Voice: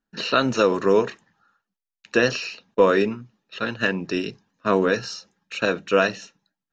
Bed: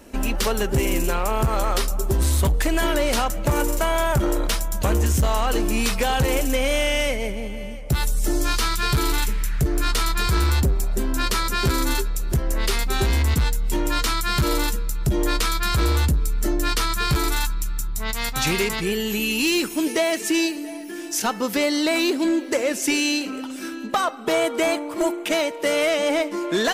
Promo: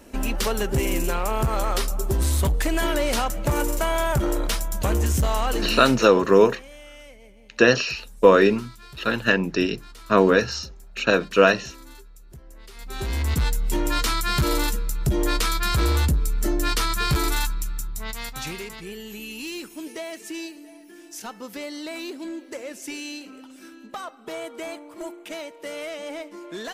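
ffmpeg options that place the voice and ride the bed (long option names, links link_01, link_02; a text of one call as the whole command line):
ffmpeg -i stem1.wav -i stem2.wav -filter_complex "[0:a]adelay=5450,volume=3dB[link_01];[1:a]volume=20dB,afade=type=out:start_time=5.47:duration=0.7:silence=0.0891251,afade=type=in:start_time=12.74:duration=0.78:silence=0.0794328,afade=type=out:start_time=17.39:duration=1.22:silence=0.251189[link_02];[link_01][link_02]amix=inputs=2:normalize=0" out.wav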